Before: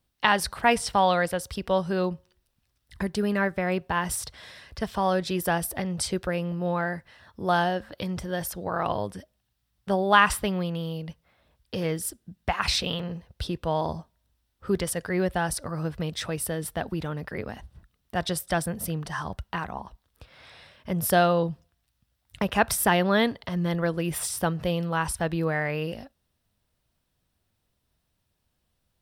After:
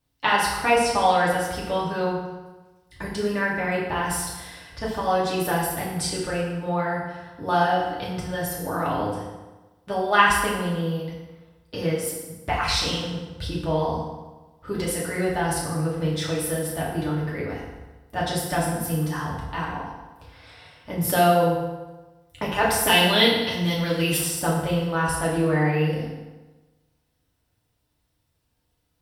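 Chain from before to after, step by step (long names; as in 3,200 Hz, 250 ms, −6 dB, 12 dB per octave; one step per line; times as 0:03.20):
0:22.87–0:24.17: high shelf with overshoot 2,100 Hz +10 dB, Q 1.5
feedback delay network reverb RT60 1.2 s, low-frequency decay 1×, high-frequency decay 0.75×, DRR −6 dB
level −4 dB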